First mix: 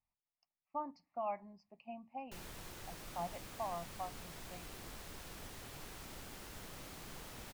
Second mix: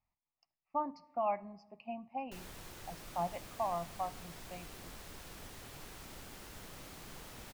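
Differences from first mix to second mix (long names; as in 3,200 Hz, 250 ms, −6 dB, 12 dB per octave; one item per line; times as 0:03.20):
speech +3.5 dB
reverb: on, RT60 1.2 s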